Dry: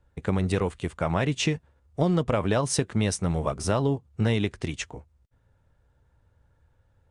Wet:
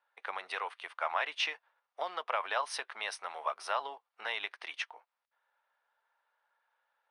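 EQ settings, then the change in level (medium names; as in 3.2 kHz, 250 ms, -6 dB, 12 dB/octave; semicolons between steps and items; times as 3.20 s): boxcar filter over 6 samples; high-pass 810 Hz 24 dB/octave; 0.0 dB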